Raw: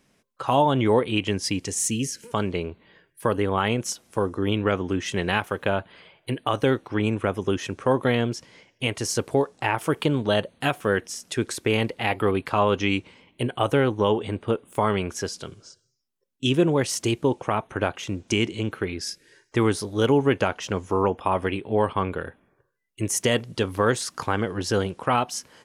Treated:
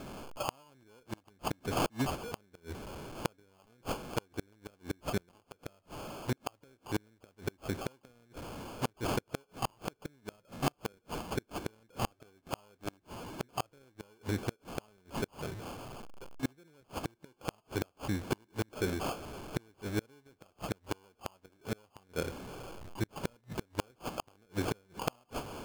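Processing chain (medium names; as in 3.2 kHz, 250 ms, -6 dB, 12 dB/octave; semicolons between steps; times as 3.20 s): jump at every zero crossing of -34 dBFS; sample-and-hold 23×; inverted gate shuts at -15 dBFS, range -36 dB; trim -5.5 dB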